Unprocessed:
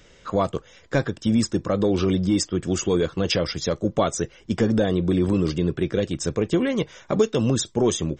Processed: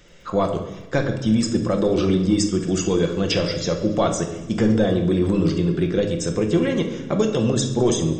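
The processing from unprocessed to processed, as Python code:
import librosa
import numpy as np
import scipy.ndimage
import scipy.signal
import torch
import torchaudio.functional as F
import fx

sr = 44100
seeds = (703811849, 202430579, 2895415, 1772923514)

p1 = fx.dmg_crackle(x, sr, seeds[0], per_s=21.0, level_db=-46.0)
p2 = p1 + fx.echo_wet_highpass(p1, sr, ms=69, feedback_pct=81, hz=2100.0, wet_db=-20.0, dry=0)
y = fx.room_shoebox(p2, sr, seeds[1], volume_m3=530.0, walls='mixed', distance_m=0.85)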